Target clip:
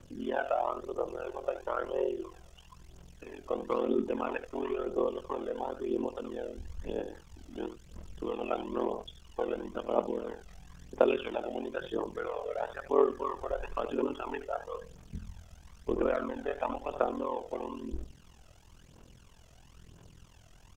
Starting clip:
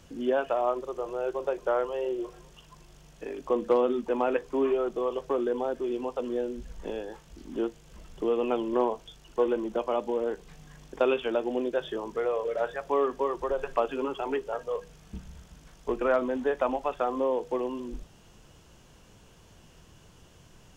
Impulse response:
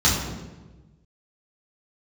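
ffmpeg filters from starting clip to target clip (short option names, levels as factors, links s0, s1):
-af "aecho=1:1:76:0.282,aphaser=in_gain=1:out_gain=1:delay=1.6:decay=0.58:speed=1:type=triangular,aeval=exprs='val(0)*sin(2*PI*21*n/s)':c=same,volume=0.708"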